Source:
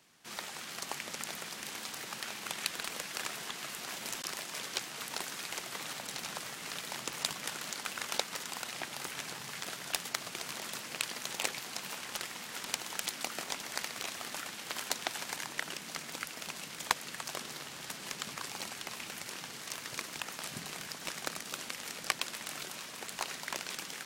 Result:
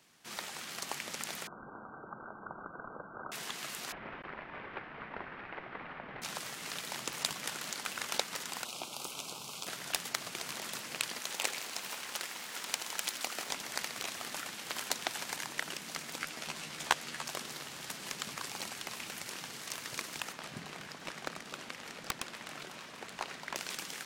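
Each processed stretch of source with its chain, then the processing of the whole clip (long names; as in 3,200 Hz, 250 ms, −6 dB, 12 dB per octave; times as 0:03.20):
0:01.47–0:03.32: variable-slope delta modulation 64 kbit/s + linear-phase brick-wall low-pass 1,600 Hz
0:03.92–0:06.22: variable-slope delta modulation 32 kbit/s + low-pass filter 2,100 Hz 24 dB per octave
0:08.65–0:09.67: Butterworth band-reject 1,800 Hz, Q 1.5 + low-shelf EQ 120 Hz −10.5 dB
0:11.19–0:13.49: high-pass filter 310 Hz 6 dB per octave + feedback echo at a low word length 81 ms, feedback 80%, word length 8 bits, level −11.5 dB
0:16.18–0:17.28: high-shelf EQ 8,900 Hz −4 dB + double-tracking delay 13 ms −4 dB + highs frequency-modulated by the lows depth 0.12 ms
0:20.32–0:23.56: low-pass filter 2,500 Hz 6 dB per octave + wrap-around overflow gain 18 dB
whole clip: no processing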